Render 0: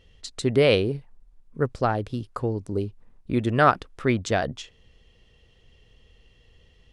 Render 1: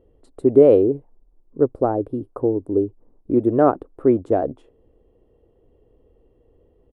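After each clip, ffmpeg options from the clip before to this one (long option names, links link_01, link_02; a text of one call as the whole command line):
ffmpeg -i in.wav -af "firequalizer=gain_entry='entry(200,0);entry(290,14);entry(1900,-16);entry(3500,-23);entry(6200,-29);entry(9200,-9)':delay=0.05:min_phase=1,volume=-3dB" out.wav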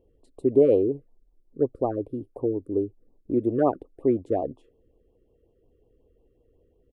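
ffmpeg -i in.wav -af "afftfilt=real='re*(1-between(b*sr/1024,760*pow(1800/760,0.5+0.5*sin(2*PI*5.5*pts/sr))/1.41,760*pow(1800/760,0.5+0.5*sin(2*PI*5.5*pts/sr))*1.41))':imag='im*(1-between(b*sr/1024,760*pow(1800/760,0.5+0.5*sin(2*PI*5.5*pts/sr))/1.41,760*pow(1800/760,0.5+0.5*sin(2*PI*5.5*pts/sr))*1.41))':win_size=1024:overlap=0.75,volume=-6dB" out.wav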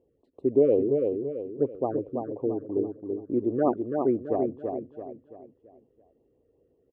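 ffmpeg -i in.wav -filter_complex "[0:a]highpass=110,lowpass=2100,asplit=2[link_01][link_02];[link_02]aecho=0:1:334|668|1002|1336|1670:0.596|0.244|0.1|0.0411|0.0168[link_03];[link_01][link_03]amix=inputs=2:normalize=0,volume=-2.5dB" out.wav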